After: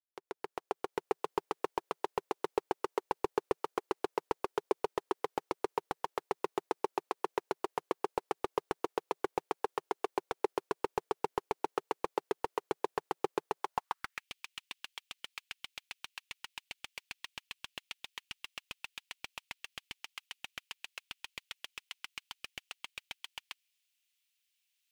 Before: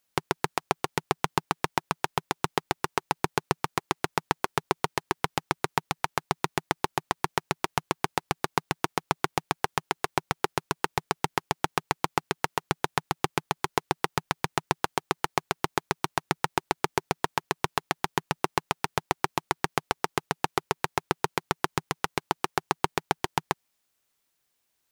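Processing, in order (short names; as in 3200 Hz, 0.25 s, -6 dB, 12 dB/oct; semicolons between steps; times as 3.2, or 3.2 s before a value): opening faded in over 1.32 s; high-pass sweep 430 Hz -> 2700 Hz, 13.54–14.28; slew limiter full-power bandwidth 160 Hz; gain -6 dB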